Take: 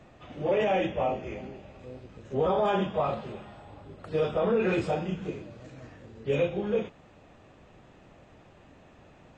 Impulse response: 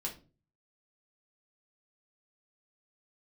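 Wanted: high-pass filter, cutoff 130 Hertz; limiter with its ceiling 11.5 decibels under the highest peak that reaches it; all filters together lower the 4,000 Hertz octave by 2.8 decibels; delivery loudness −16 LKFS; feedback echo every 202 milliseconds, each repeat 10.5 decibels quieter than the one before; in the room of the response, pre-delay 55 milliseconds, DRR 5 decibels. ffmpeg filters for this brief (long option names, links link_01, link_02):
-filter_complex "[0:a]highpass=130,equalizer=frequency=4000:width_type=o:gain=-4,alimiter=level_in=3.5dB:limit=-24dB:level=0:latency=1,volume=-3.5dB,aecho=1:1:202|404|606:0.299|0.0896|0.0269,asplit=2[link_01][link_02];[1:a]atrim=start_sample=2205,adelay=55[link_03];[link_02][link_03]afir=irnorm=-1:irlink=0,volume=-5.5dB[link_04];[link_01][link_04]amix=inputs=2:normalize=0,volume=19.5dB"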